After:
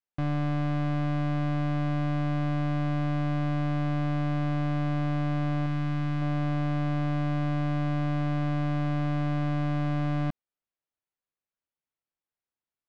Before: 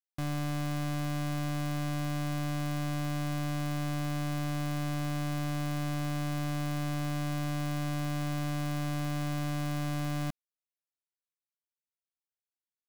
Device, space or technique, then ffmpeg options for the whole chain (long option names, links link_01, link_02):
phone in a pocket: -filter_complex "[0:a]asettb=1/sr,asplit=3[link_01][link_02][link_03];[link_01]atrim=end=5.664[link_04];[link_02]atrim=start=5.66:end=6.22,asetpts=PTS-STARTPTS,afade=type=in:duration=0.004:curve=qsin,afade=type=out:start_time=0.556:duration=0.004:curve=qsin,equalizer=frequency=540:width=1.3:gain=-8.5[link_05];[link_03]atrim=start=6.216[link_06];[link_04][link_05]acrossfade=duration=0.004:curve1=hsin:curve2=qsin[link_07];[link_07][link_06]acrossfade=duration=0.004:curve1=qsin:curve2=hsin,lowpass=3600,highshelf=frequency=2500:gain=-9,volume=5.5dB"